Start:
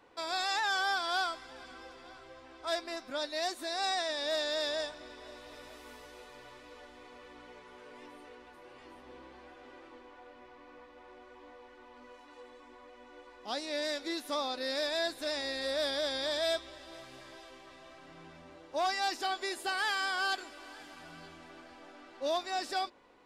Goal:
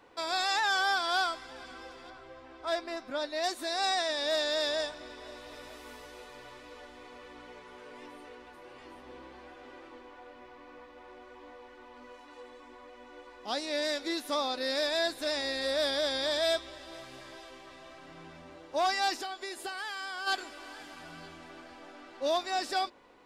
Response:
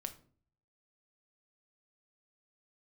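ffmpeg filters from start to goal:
-filter_complex "[0:a]asettb=1/sr,asplit=3[link_01][link_02][link_03];[link_01]atrim=end=2.104[link_04];[link_02]atrim=start=2.1:end=3.44,asetpts=PTS-STARTPTS,afade=type=in:duration=0.004:curve=qsin,afade=type=out:start_time=1.336:duration=0.004:curve=qsin,highshelf=frequency=3500:gain=-8.5[link_05];[link_03]atrim=start=3.436[link_06];[link_04][link_05]acrossfade=duration=0.004:curve1=hsin:curve2=qsin[link_07];[link_07][link_06]acrossfade=duration=0.004:curve1=qsin:curve2=hsin,asplit=3[link_08][link_09][link_10];[link_08]afade=type=out:start_time=19.21:duration=0.02[link_11];[link_09]acompressor=threshold=-39dB:ratio=6,afade=type=in:start_time=19.21:duration=0.02,afade=type=out:start_time=20.26:duration=0.02[link_12];[link_10]afade=type=in:start_time=20.26:duration=0.02[link_13];[link_11][link_12][link_13]amix=inputs=3:normalize=0,volume=3dB"

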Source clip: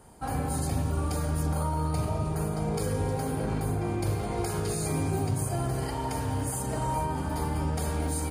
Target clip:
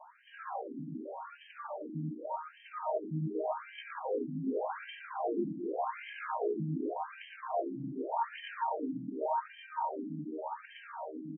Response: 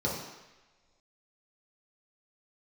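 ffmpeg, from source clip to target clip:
-filter_complex "[0:a]equalizer=frequency=200:width_type=o:width=0.33:gain=-4,equalizer=frequency=630:width_type=o:width=0.33:gain=6,equalizer=frequency=1000:width_type=o:width=0.33:gain=7,equalizer=frequency=3150:width_type=o:width=0.33:gain=8,equalizer=frequency=8000:width_type=o:width=0.33:gain=-10,alimiter=level_in=6dB:limit=-24dB:level=0:latency=1:release=86,volume=-6dB,dynaudnorm=framelen=390:gausssize=9:maxgain=5.5dB,atempo=0.73,asplit=2[link_01][link_02];[link_02]aecho=0:1:115:0.708[link_03];[link_01][link_03]amix=inputs=2:normalize=0,afftfilt=real='re*between(b*sr/1024,220*pow(2300/220,0.5+0.5*sin(2*PI*0.86*pts/sr))/1.41,220*pow(2300/220,0.5+0.5*sin(2*PI*0.86*pts/sr))*1.41)':imag='im*between(b*sr/1024,220*pow(2300/220,0.5+0.5*sin(2*PI*0.86*pts/sr))/1.41,220*pow(2300/220,0.5+0.5*sin(2*PI*0.86*pts/sr))*1.41)':win_size=1024:overlap=0.75,volume=3.5dB"

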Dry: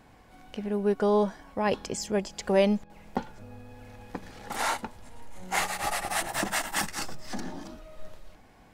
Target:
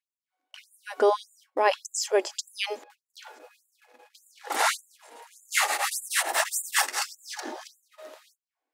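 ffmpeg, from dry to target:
ffmpeg -i in.wav -af "agate=range=-34dB:threshold=-44dB:ratio=16:detection=peak,afftfilt=real='re*gte(b*sr/1024,250*pow(7000/250,0.5+0.5*sin(2*PI*1.7*pts/sr)))':imag='im*gte(b*sr/1024,250*pow(7000/250,0.5+0.5*sin(2*PI*1.7*pts/sr)))':win_size=1024:overlap=0.75,volume=6dB" out.wav

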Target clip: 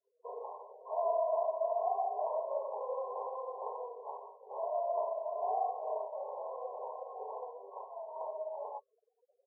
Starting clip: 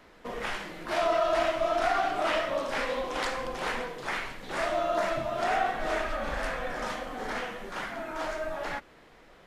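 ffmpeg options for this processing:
ffmpeg -i in.wav -af "afftfilt=real='re*gte(hypot(re,im),0.00562)':imag='im*gte(hypot(re,im),0.00562)':win_size=1024:overlap=0.75,afftdn=noise_reduction=19:noise_floor=-47,afftfilt=real='re*between(b*sr/4096,390,1100)':imag='im*between(b*sr/4096,390,1100)':win_size=4096:overlap=0.75,volume=-5dB" out.wav

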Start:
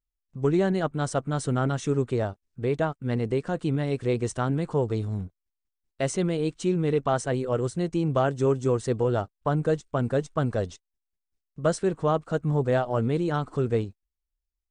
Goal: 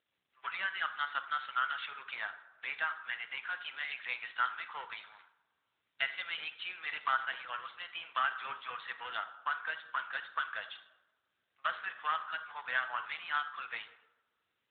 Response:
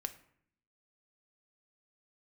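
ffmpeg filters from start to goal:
-filter_complex "[0:a]aeval=exprs='if(lt(val(0),0),0.708*val(0),val(0))':channel_layout=same,highpass=frequency=1400:width=0.5412,highpass=frequency=1400:width=1.3066,asplit=2[link_01][link_02];[link_02]acompressor=threshold=-50dB:ratio=8,volume=-2dB[link_03];[link_01][link_03]amix=inputs=2:normalize=0,aphaser=in_gain=1:out_gain=1:delay=2.7:decay=0.21:speed=0.54:type=triangular[link_04];[1:a]atrim=start_sample=2205,asetrate=26901,aresample=44100[link_05];[link_04][link_05]afir=irnorm=-1:irlink=0,volume=4dB" -ar 8000 -c:a libopencore_amrnb -b:a 12200

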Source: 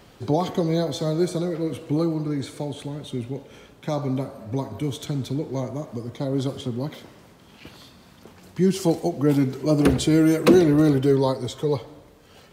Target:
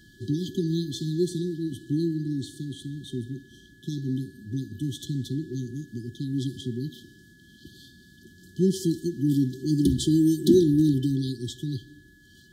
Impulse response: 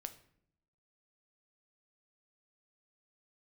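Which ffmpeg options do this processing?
-af "afftfilt=real='re*(1-between(b*sr/4096,390,3000))':imag='im*(1-between(b*sr/4096,390,3000))':win_size=4096:overlap=0.75,aeval=exprs='val(0)+0.002*sin(2*PI*1700*n/s)':channel_layout=same,volume=-2.5dB"

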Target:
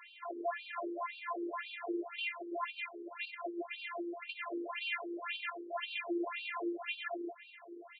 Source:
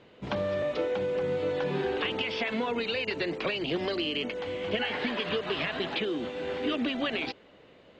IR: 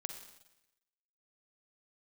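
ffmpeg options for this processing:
-filter_complex "[0:a]aeval=exprs='clip(val(0),-1,0.0133)':channel_layout=same,afftfilt=real='hypot(re,im)*cos(PI*b)':imag='0':win_size=512:overlap=0.75,acompressor=threshold=-39dB:ratio=2,alimiter=level_in=8.5dB:limit=-24dB:level=0:latency=1:release=90,volume=-8.5dB,acrossover=split=380 3600:gain=0.178 1 0.141[link_01][link_02][link_03];[link_01][link_02][link_03]amix=inputs=3:normalize=0,bandreject=frequency=50:width_type=h:width=6,bandreject=frequency=100:width_type=h:width=6,bandreject=frequency=150:width_type=h:width=6,asplit=2[link_04][link_05];[link_05]adelay=580,lowpass=frequency=1200:poles=1,volume=-14dB,asplit=2[link_06][link_07];[link_07]adelay=580,lowpass=frequency=1200:poles=1,volume=0.53,asplit=2[link_08][link_09];[link_09]adelay=580,lowpass=frequency=1200:poles=1,volume=0.53,asplit=2[link_10][link_11];[link_11]adelay=580,lowpass=frequency=1200:poles=1,volume=0.53,asplit=2[link_12][link_13];[link_13]adelay=580,lowpass=frequency=1200:poles=1,volume=0.53[link_14];[link_06][link_08][link_10][link_12][link_14]amix=inputs=5:normalize=0[link_15];[link_04][link_15]amix=inputs=2:normalize=0,afftfilt=real='re*between(b*sr/1024,330*pow(3500/330,0.5+0.5*sin(2*PI*1.9*pts/sr))/1.41,330*pow(3500/330,0.5+0.5*sin(2*PI*1.9*pts/sr))*1.41)':imag='im*between(b*sr/1024,330*pow(3500/330,0.5+0.5*sin(2*PI*1.9*pts/sr))/1.41,330*pow(3500/330,0.5+0.5*sin(2*PI*1.9*pts/sr))*1.41)':win_size=1024:overlap=0.75,volume=15.5dB"

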